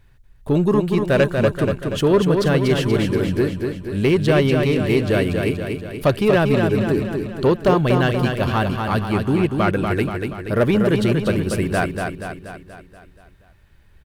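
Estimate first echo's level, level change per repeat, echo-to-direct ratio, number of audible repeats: −5.0 dB, −5.0 dB, −3.5 dB, 6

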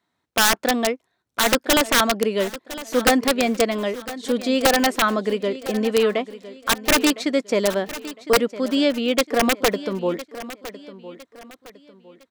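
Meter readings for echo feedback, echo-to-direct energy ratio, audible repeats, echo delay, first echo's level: 35%, −15.0 dB, 3, 1,008 ms, −15.5 dB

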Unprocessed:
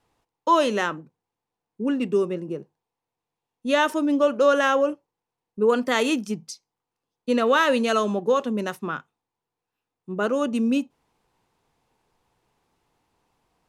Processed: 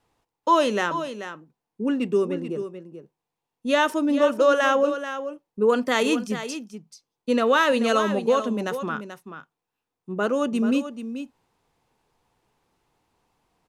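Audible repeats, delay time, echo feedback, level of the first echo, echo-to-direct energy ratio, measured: 1, 435 ms, repeats not evenly spaced, −10.5 dB, −10.5 dB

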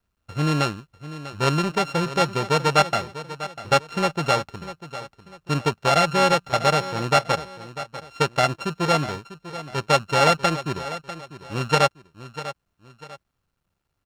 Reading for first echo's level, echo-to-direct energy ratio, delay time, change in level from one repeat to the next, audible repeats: −14.0 dB, −13.5 dB, 646 ms, −9.0 dB, 2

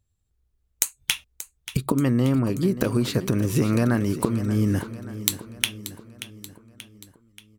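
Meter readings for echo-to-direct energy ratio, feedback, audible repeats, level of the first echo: −12.0 dB, 54%, 5, −13.5 dB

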